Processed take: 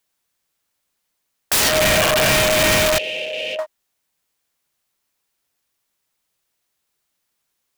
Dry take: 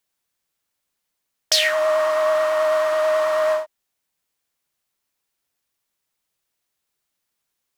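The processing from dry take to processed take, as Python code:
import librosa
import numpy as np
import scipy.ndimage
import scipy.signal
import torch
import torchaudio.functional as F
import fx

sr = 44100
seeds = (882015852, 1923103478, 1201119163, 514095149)

y = fx.envelope_sharpen(x, sr, power=3.0, at=(1.89, 2.31), fade=0.02)
y = (np.mod(10.0 ** (15.0 / 20.0) * y + 1.0, 2.0) - 1.0) / 10.0 ** (15.0 / 20.0)
y = fx.double_bandpass(y, sr, hz=1200.0, octaves=2.4, at=(2.98, 3.59))
y = F.gain(torch.from_numpy(y), 4.0).numpy()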